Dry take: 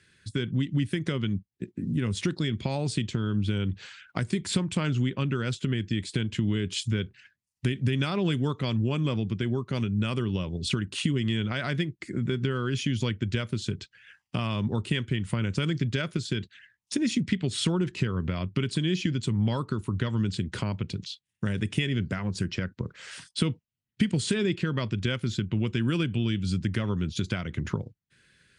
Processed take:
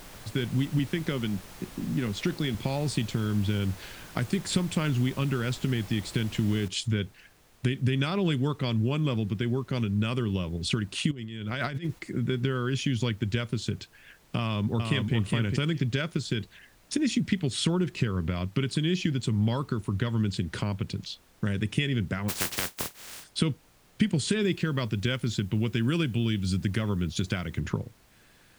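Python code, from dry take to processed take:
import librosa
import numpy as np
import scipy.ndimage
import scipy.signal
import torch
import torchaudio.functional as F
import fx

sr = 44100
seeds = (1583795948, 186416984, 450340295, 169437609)

y = fx.bandpass_edges(x, sr, low_hz=130.0, high_hz=5900.0, at=(0.79, 2.55))
y = fx.noise_floor_step(y, sr, seeds[0], at_s=6.68, before_db=-46, after_db=-60, tilt_db=3.0)
y = fx.over_compress(y, sr, threshold_db=-32.0, ratio=-0.5, at=(11.11, 11.99))
y = fx.echo_throw(y, sr, start_s=14.38, length_s=0.77, ms=410, feedback_pct=10, wet_db=-4.0)
y = fx.spec_flatten(y, sr, power=0.2, at=(22.28, 23.23), fade=0.02)
y = fx.high_shelf(y, sr, hz=8300.0, db=7.0, at=(24.42, 27.6))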